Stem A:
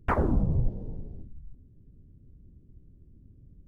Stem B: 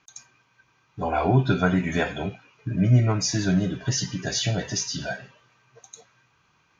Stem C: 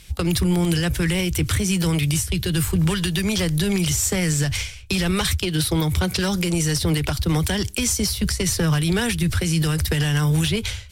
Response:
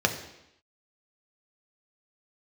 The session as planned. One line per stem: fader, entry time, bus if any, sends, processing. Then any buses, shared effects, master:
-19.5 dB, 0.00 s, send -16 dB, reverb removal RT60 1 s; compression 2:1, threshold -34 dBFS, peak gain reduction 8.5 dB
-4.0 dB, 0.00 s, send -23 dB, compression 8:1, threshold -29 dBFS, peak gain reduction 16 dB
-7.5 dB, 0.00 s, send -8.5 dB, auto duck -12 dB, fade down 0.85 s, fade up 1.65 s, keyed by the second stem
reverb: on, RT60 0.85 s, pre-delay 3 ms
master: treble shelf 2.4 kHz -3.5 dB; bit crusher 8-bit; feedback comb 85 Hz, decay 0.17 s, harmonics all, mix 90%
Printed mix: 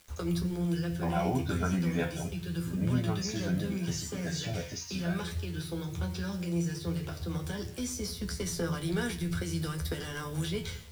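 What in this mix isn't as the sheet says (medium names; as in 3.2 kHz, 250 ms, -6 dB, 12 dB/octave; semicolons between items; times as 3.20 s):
stem B: missing compression 8:1, threshold -29 dBFS, peak gain reduction 16 dB; reverb return -7.0 dB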